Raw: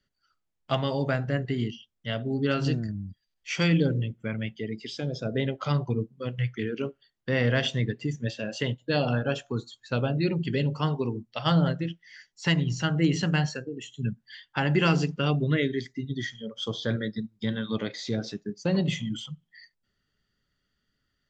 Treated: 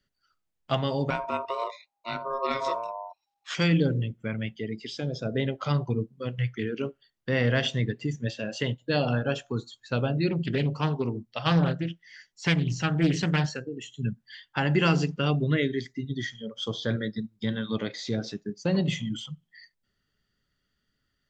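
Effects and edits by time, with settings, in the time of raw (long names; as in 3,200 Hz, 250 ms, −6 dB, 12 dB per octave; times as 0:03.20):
0:01.10–0:03.55: ring modulation 810 Hz
0:10.30–0:13.61: highs frequency-modulated by the lows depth 0.37 ms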